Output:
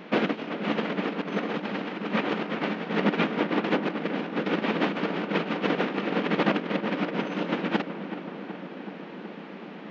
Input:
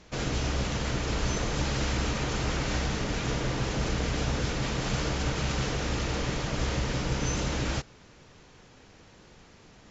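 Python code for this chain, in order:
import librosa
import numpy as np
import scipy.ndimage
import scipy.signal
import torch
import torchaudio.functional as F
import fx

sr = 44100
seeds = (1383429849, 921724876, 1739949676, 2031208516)

p1 = scipy.signal.sosfilt(scipy.signal.butter(4, 3100.0, 'lowpass', fs=sr, output='sos'), x)
p2 = fx.low_shelf(p1, sr, hz=260.0, db=7.0)
p3 = fx.over_compress(p2, sr, threshold_db=-28.0, ratio=-0.5)
p4 = fx.brickwall_highpass(p3, sr, low_hz=170.0)
p5 = p4 + fx.echo_filtered(p4, sr, ms=376, feedback_pct=78, hz=2000.0, wet_db=-10.5, dry=0)
y = p5 * 10.0 ** (6.5 / 20.0)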